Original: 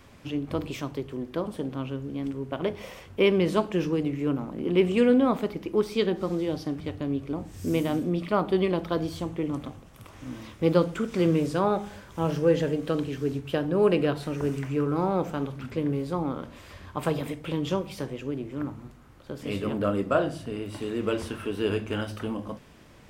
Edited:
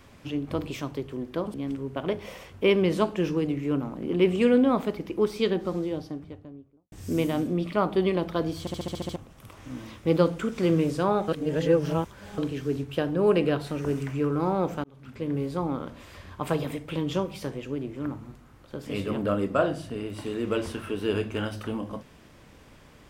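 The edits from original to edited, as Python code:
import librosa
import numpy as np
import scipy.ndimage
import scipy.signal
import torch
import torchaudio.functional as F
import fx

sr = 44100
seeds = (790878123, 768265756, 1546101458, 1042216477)

y = fx.studio_fade_out(x, sr, start_s=6.04, length_s=1.44)
y = fx.edit(y, sr, fx.cut(start_s=1.54, length_s=0.56),
    fx.stutter_over(start_s=9.16, slice_s=0.07, count=8),
    fx.reverse_span(start_s=11.84, length_s=1.1),
    fx.fade_in_span(start_s=15.4, length_s=0.58), tone=tone)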